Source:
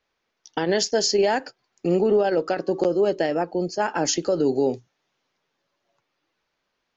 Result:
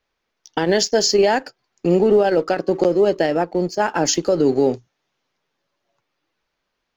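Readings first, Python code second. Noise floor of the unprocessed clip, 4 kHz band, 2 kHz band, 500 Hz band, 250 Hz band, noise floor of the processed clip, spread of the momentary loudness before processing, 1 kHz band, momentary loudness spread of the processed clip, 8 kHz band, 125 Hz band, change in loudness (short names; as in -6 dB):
-77 dBFS, +4.0 dB, +4.5 dB, +4.5 dB, +5.0 dB, -77 dBFS, 7 LU, +4.5 dB, 8 LU, n/a, +5.5 dB, +4.5 dB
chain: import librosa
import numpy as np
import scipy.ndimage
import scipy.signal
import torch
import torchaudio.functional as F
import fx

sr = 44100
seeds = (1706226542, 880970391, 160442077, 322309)

p1 = fx.low_shelf(x, sr, hz=66.0, db=8.0)
p2 = np.sign(p1) * np.maximum(np.abs(p1) - 10.0 ** (-38.5 / 20.0), 0.0)
y = p1 + F.gain(torch.from_numpy(p2), -3.0).numpy()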